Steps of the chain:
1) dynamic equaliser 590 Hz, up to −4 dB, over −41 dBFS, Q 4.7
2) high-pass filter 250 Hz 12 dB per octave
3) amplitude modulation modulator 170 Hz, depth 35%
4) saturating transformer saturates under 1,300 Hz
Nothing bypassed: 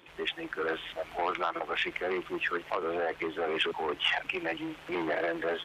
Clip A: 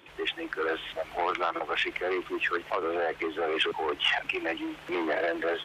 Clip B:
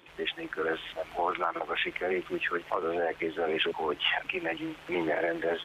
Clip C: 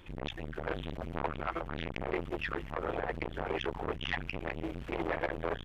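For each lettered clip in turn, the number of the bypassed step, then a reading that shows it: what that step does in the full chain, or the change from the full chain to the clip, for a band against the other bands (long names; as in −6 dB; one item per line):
3, 125 Hz band −5.0 dB
4, 4 kHz band −1.5 dB
2, 125 Hz band +15.5 dB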